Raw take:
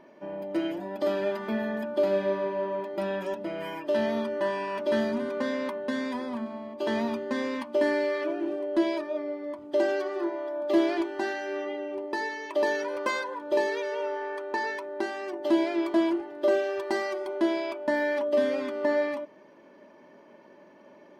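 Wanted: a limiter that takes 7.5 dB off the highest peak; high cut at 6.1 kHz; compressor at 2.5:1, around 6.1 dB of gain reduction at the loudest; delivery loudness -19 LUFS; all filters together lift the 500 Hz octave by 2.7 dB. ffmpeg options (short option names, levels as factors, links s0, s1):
-af "lowpass=6100,equalizer=f=500:t=o:g=3.5,acompressor=threshold=0.0501:ratio=2.5,volume=4.22,alimiter=limit=0.299:level=0:latency=1"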